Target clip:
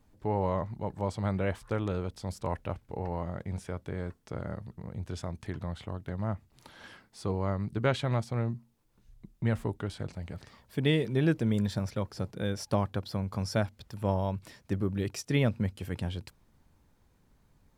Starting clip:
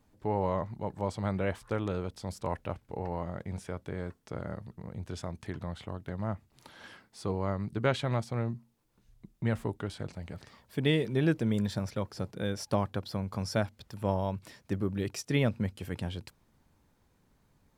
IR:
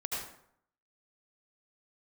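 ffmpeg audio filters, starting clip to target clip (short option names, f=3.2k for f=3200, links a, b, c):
-af "lowshelf=f=75:g=7"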